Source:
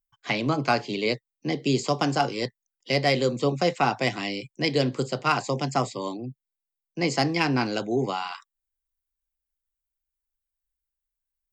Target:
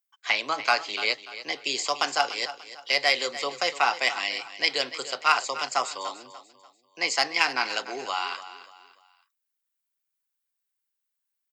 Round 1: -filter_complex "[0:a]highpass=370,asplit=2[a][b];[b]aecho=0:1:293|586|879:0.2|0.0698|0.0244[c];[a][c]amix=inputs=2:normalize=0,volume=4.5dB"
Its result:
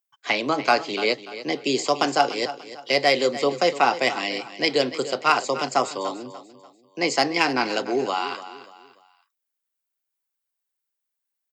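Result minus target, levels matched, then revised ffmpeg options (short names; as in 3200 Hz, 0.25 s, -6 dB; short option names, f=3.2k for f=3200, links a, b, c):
500 Hz band +7.0 dB
-filter_complex "[0:a]highpass=1k,asplit=2[a][b];[b]aecho=0:1:293|586|879:0.2|0.0698|0.0244[c];[a][c]amix=inputs=2:normalize=0,volume=4.5dB"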